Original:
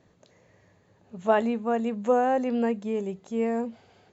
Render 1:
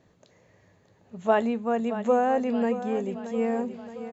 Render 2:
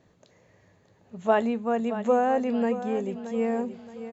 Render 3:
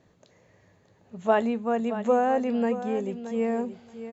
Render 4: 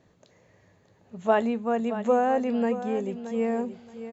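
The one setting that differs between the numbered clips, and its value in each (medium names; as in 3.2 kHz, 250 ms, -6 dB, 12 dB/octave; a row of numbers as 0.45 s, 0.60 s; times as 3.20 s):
feedback delay, feedback: 57%, 38%, 16%, 23%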